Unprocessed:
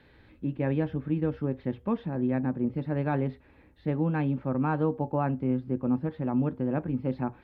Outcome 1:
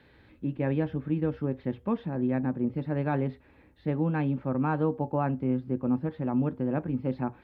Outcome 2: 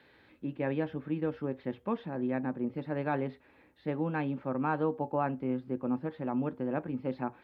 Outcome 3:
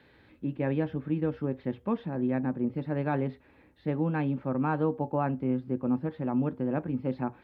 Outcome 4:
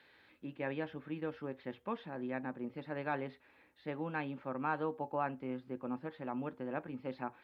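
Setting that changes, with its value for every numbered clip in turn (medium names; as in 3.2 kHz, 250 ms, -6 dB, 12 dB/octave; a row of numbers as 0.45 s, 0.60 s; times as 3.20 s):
high-pass, cutoff frequency: 45 Hz, 380 Hz, 130 Hz, 1.2 kHz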